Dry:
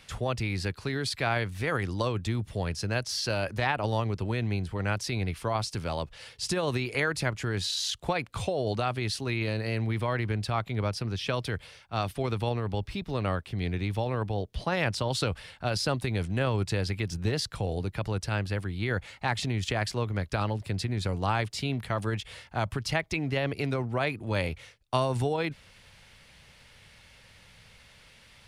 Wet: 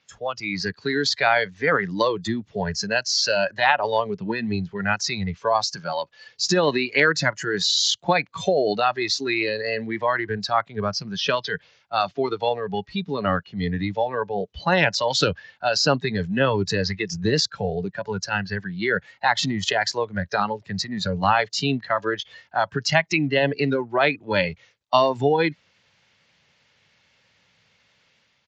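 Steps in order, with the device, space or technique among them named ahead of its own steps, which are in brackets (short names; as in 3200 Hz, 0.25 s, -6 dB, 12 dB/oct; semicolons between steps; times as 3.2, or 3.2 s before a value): 5.76–6.27 HPF 230 Hz 6 dB/oct; spectral noise reduction 17 dB; Bluetooth headset (HPF 140 Hz 12 dB/oct; AGC gain up to 6 dB; downsampling 16000 Hz; gain +4.5 dB; SBC 64 kbps 16000 Hz)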